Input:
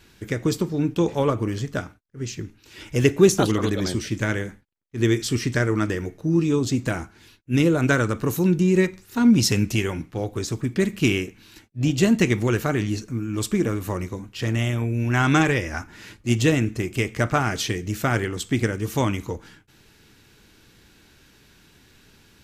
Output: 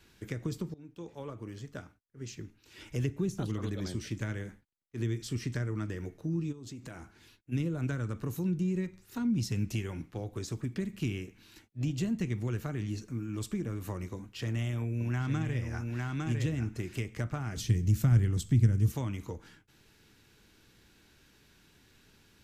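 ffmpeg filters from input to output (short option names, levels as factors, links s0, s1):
-filter_complex "[0:a]asplit=3[s0][s1][s2];[s0]afade=t=out:st=6.51:d=0.02[s3];[s1]acompressor=threshold=0.02:ratio=5:attack=3.2:release=140:knee=1:detection=peak,afade=t=in:st=6.51:d=0.02,afade=t=out:st=7.51:d=0.02[s4];[s2]afade=t=in:st=7.51:d=0.02[s5];[s3][s4][s5]amix=inputs=3:normalize=0,asettb=1/sr,asplit=3[s6][s7][s8];[s6]atrim=end=14.154[s9];[s7]atrim=start=14.15:end=17,asetpts=PTS-STARTPTS,afade=t=in:d=0.004:c=qsin,afade=t=out:st=2.846:d=0.004:c=qsin,aecho=1:1:855:0.631,atrim=end_sample=125685[s10];[s8]atrim=start=16.996[s11];[s9][s10]acrossfade=d=0.004:c1=hsin:c2=qsin[s12];[s12][s11]acrossfade=d=0.004:c1=qsin:c2=hsin,asettb=1/sr,asplit=3[s13][s14][s15];[s13]atrim=end=17.564[s16];[s14]atrim=start=17.56:end=18.92,asetpts=PTS-STARTPTS,afade=t=in:d=0.004:c=qsin,afade=t=out:st=1.356:d=0.004:c=qsin,bass=f=250:g=13,treble=f=4000:g=7[s17];[s15]atrim=start=18.916[s18];[s16][s17]acrossfade=d=0.004:c1=hsin:c2=qsin[s19];[s19][s18]acrossfade=d=0.004:c1=qsin:c2=hsin,asplit=2[s20][s21];[s20]atrim=end=0.74,asetpts=PTS-STARTPTS,afade=t=out:st=0.736:d=0.004:c=hsin:silence=0.0707946[s22];[s21]atrim=start=0.74,asetpts=PTS-STARTPTS,afade=t=in:d=2.36:silence=0.0707946[s23];[s22][s23]concat=n=2:v=0:a=1,acrossover=split=200[s24][s25];[s25]acompressor=threshold=0.0316:ratio=6[s26];[s24][s26]amix=inputs=2:normalize=0,volume=0.398"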